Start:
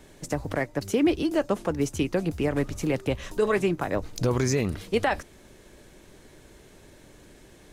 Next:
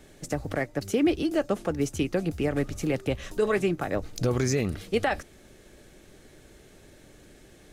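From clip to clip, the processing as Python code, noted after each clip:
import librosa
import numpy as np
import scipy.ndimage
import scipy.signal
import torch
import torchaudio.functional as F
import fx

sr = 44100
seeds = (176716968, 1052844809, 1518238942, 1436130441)

y = fx.notch(x, sr, hz=980.0, q=6.2)
y = F.gain(torch.from_numpy(y), -1.0).numpy()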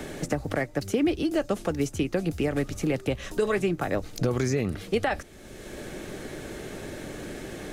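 y = fx.band_squash(x, sr, depth_pct=70)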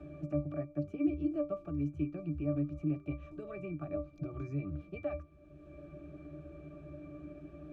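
y = fx.octave_resonator(x, sr, note='D', decay_s=0.19)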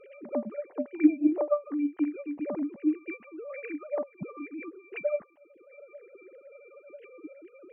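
y = fx.sine_speech(x, sr)
y = F.gain(torch.from_numpy(y), 6.0).numpy()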